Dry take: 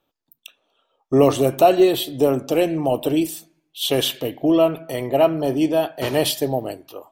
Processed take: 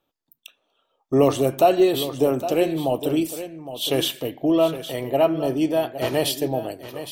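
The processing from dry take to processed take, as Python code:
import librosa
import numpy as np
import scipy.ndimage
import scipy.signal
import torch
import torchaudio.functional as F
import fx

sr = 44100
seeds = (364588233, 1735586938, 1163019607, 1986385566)

y = x + 10.0 ** (-12.0 / 20.0) * np.pad(x, (int(812 * sr / 1000.0), 0))[:len(x)]
y = y * 10.0 ** (-2.5 / 20.0)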